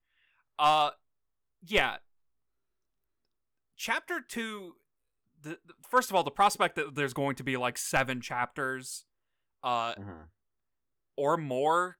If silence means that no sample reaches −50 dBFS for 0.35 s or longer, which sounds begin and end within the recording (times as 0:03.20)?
0:00.59–0:00.94
0:01.63–0:01.99
0:03.78–0:04.71
0:05.44–0:09.01
0:09.64–0:10.26